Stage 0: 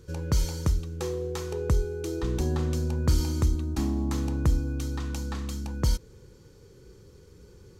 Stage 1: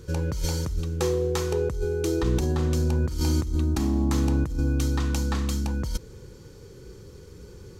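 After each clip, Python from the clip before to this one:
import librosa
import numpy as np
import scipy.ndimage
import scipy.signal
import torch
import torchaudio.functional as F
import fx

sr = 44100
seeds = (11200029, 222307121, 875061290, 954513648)

y = fx.over_compress(x, sr, threshold_db=-28.0, ratio=-1.0)
y = y * librosa.db_to_amplitude(4.5)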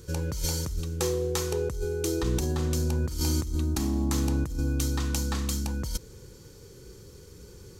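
y = fx.high_shelf(x, sr, hz=4700.0, db=10.0)
y = y * librosa.db_to_amplitude(-3.5)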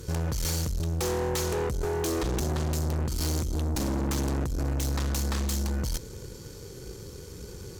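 y = fx.tube_stage(x, sr, drive_db=35.0, bias=0.6)
y = y * librosa.db_to_amplitude(9.0)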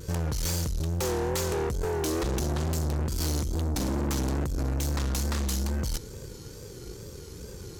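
y = fx.vibrato(x, sr, rate_hz=2.3, depth_cents=88.0)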